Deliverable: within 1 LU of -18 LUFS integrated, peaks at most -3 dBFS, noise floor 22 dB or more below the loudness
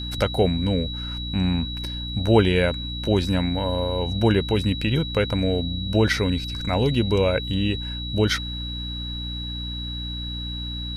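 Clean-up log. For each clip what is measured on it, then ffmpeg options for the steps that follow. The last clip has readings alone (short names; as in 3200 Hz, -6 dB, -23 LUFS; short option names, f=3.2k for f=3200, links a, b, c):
hum 60 Hz; harmonics up to 300 Hz; hum level -30 dBFS; steady tone 3900 Hz; tone level -32 dBFS; loudness -23.5 LUFS; peak -4.5 dBFS; loudness target -18.0 LUFS
-> -af "bandreject=f=60:t=h:w=6,bandreject=f=120:t=h:w=6,bandreject=f=180:t=h:w=6,bandreject=f=240:t=h:w=6,bandreject=f=300:t=h:w=6"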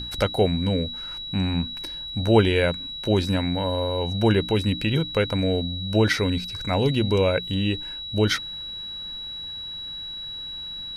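hum none; steady tone 3900 Hz; tone level -32 dBFS
-> -af "bandreject=f=3.9k:w=30"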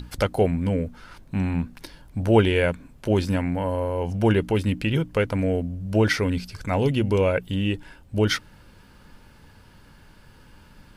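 steady tone none; loudness -24.0 LUFS; peak -5.0 dBFS; loudness target -18.0 LUFS
-> -af "volume=6dB,alimiter=limit=-3dB:level=0:latency=1"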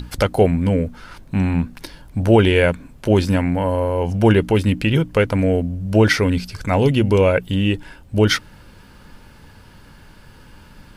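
loudness -18.0 LUFS; peak -3.0 dBFS; noise floor -46 dBFS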